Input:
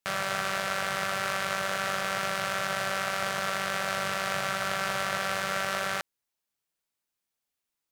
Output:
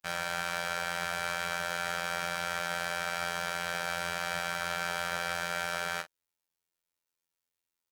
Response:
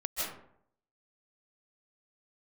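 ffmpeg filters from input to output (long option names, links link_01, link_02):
-filter_complex "[0:a]afftfilt=real='hypot(re,im)*cos(PI*b)':imag='0':win_size=2048:overlap=0.75,asplit=2[link_01][link_02];[link_02]adelay=37,volume=-11dB[link_03];[link_01][link_03]amix=inputs=2:normalize=0"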